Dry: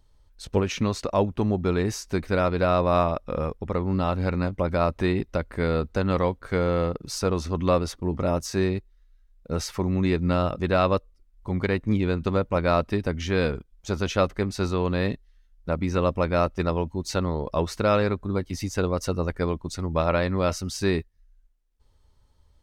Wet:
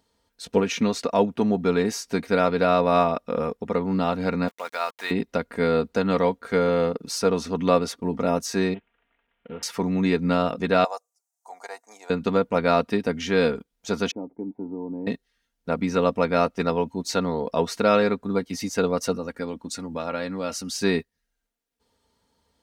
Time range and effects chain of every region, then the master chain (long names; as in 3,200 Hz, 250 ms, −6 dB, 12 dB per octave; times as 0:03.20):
0:04.48–0:05.11: high-pass filter 1,000 Hz + centre clipping without the shift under −44 dBFS
0:08.74–0:09.63: variable-slope delta modulation 16 kbit/s + downward compressor 2.5 to 1, threshold −34 dBFS + saturating transformer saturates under 280 Hz
0:10.84–0:12.10: four-pole ladder high-pass 700 Hz, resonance 75% + high shelf with overshoot 4,700 Hz +14 dB, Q 3
0:14.11–0:15.07: parametric band 800 Hz +4.5 dB 2.8 octaves + downward compressor 2 to 1, threshold −21 dBFS + formant resonators in series u
0:19.16–0:20.70: dynamic equaliser 8,400 Hz, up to +4 dB, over −50 dBFS, Q 0.81 + comb filter 3.6 ms, depth 34% + downward compressor 2 to 1, threshold −32 dBFS
whole clip: high-pass filter 170 Hz 12 dB per octave; notch filter 1,100 Hz, Q 14; comb filter 4.3 ms, depth 54%; level +2 dB